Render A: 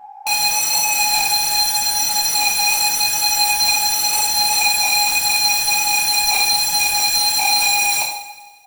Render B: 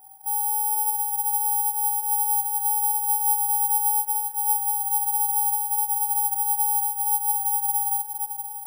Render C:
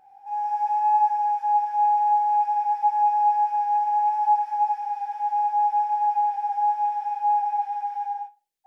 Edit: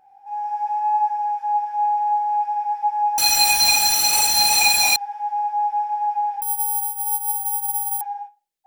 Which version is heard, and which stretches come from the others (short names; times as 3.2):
C
3.18–4.96 from A
6.42–8.01 from B